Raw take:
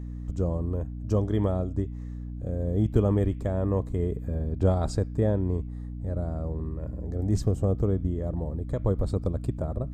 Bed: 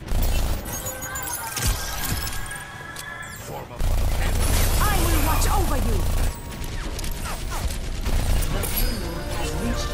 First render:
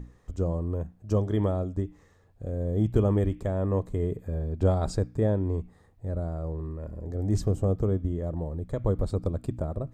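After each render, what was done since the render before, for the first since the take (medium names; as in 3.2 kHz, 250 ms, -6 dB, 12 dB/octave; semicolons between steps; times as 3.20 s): hum notches 60/120/180/240/300 Hz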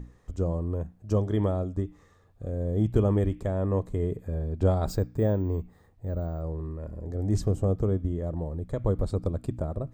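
1.74–2.46 s: small resonant body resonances 1.2/3.6 kHz, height 8 dB -> 12 dB; 4.87–6.41 s: careless resampling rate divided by 2×, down filtered, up hold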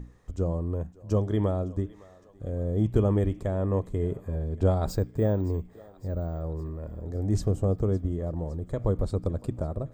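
thinning echo 561 ms, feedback 70%, high-pass 490 Hz, level -20 dB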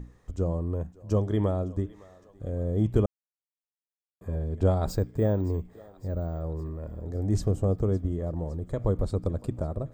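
3.06–4.21 s: mute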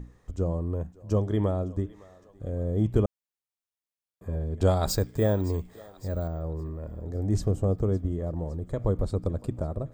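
4.61–6.28 s: FFT filter 320 Hz 0 dB, 2.4 kHz +7 dB, 3.8 kHz +11 dB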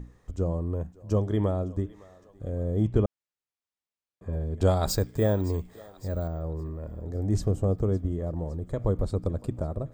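2.89–4.33 s: distance through air 64 m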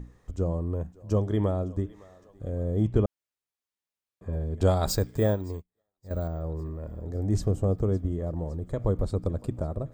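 5.31–6.11 s: upward expansion 2.5:1, over -48 dBFS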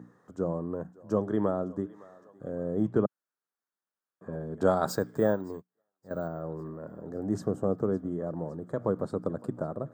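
high-pass 150 Hz 24 dB/octave; resonant high shelf 1.9 kHz -7 dB, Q 3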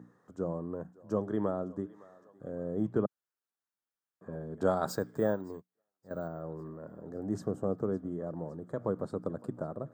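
trim -4 dB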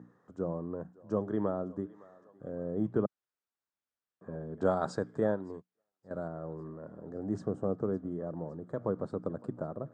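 steep low-pass 9.3 kHz; treble shelf 4.9 kHz -10 dB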